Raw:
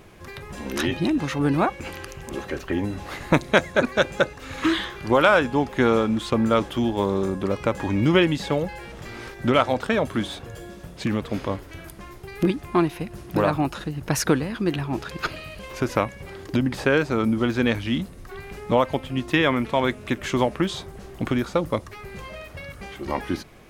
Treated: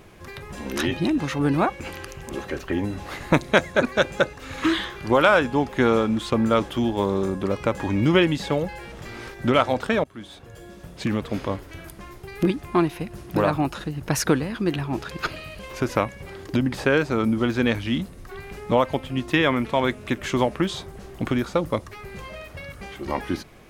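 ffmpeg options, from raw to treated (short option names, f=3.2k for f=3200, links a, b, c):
-filter_complex "[0:a]asplit=2[a][b];[a]atrim=end=10.04,asetpts=PTS-STARTPTS,afade=t=out:st=10.036:d=0.004:c=hsin:silence=0.0707946[c];[b]atrim=start=10.04,asetpts=PTS-STARTPTS,afade=t=in:d=0.98:silence=0.0707946[d];[c][d]concat=n=2:v=0:a=1"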